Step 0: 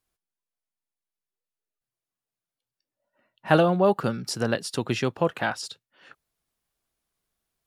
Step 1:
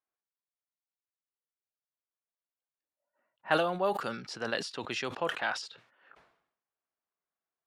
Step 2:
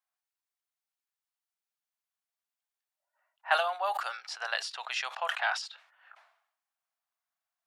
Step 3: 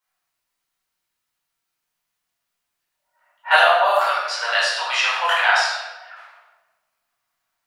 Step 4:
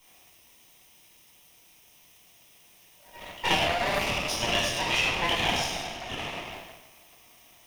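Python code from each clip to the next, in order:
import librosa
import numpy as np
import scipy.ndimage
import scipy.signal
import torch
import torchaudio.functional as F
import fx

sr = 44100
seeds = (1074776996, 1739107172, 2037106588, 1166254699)

y1 = fx.env_lowpass(x, sr, base_hz=1400.0, full_db=-18.5)
y1 = fx.highpass(y1, sr, hz=970.0, slope=6)
y1 = fx.sustainer(y1, sr, db_per_s=85.0)
y1 = F.gain(torch.from_numpy(y1), -3.0).numpy()
y2 = scipy.signal.sosfilt(scipy.signal.ellip(4, 1.0, 80, 690.0, 'highpass', fs=sr, output='sos'), y1)
y2 = F.gain(torch.from_numpy(y2), 3.0).numpy()
y3 = fx.notch(y2, sr, hz=810.0, q=15.0)
y3 = fx.room_shoebox(y3, sr, seeds[0], volume_m3=640.0, walls='mixed', distance_m=4.6)
y3 = F.gain(torch.from_numpy(y3), 4.5).numpy()
y4 = fx.lower_of_two(y3, sr, delay_ms=0.35)
y4 = fx.notch(y4, sr, hz=7900.0, q=16.0)
y4 = fx.band_squash(y4, sr, depth_pct=100)
y4 = F.gain(torch.from_numpy(y4), -6.5).numpy()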